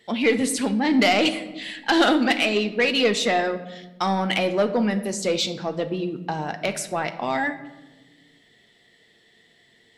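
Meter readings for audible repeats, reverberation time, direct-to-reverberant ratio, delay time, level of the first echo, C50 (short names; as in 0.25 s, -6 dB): none, 1.1 s, 7.5 dB, none, none, 12.5 dB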